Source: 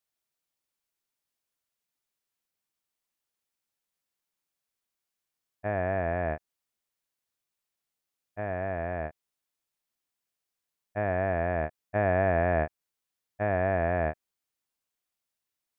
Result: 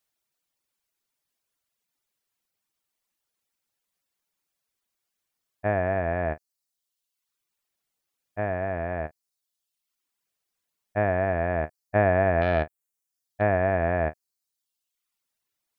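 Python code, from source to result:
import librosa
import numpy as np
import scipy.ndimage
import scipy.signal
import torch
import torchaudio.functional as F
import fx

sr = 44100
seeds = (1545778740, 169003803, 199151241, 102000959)

y = fx.self_delay(x, sr, depth_ms=0.073, at=(12.41, 13.42))
y = fx.dereverb_blind(y, sr, rt60_s=0.89)
y = y * 10.0 ** (6.0 / 20.0)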